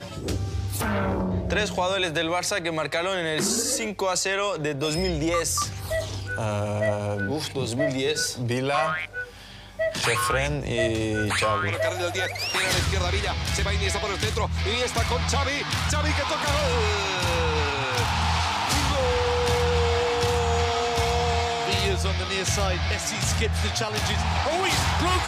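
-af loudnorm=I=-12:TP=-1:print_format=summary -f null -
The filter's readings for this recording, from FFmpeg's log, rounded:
Input Integrated:    -24.5 LUFS
Input True Peak:     -10.6 dBTP
Input LRA:             2.8 LU
Input Threshold:     -34.6 LUFS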